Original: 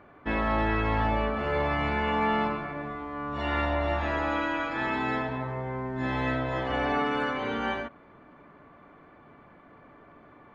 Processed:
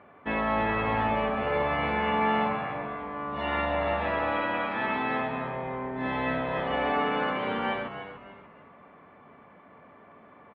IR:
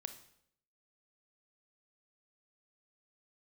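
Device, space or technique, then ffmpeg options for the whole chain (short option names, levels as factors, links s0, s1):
frequency-shifting delay pedal into a guitar cabinet: -filter_complex "[0:a]asplit=5[s0][s1][s2][s3][s4];[s1]adelay=293,afreqshift=-92,volume=0.335[s5];[s2]adelay=586,afreqshift=-184,volume=0.114[s6];[s3]adelay=879,afreqshift=-276,volume=0.0389[s7];[s4]adelay=1172,afreqshift=-368,volume=0.0132[s8];[s0][s5][s6][s7][s8]amix=inputs=5:normalize=0,highpass=110,equalizer=f=130:t=q:w=4:g=-7,equalizer=f=320:t=q:w=4:g=-8,equalizer=f=1500:t=q:w=4:g=-4,lowpass=f=3500:w=0.5412,lowpass=f=3500:w=1.3066,volume=1.19"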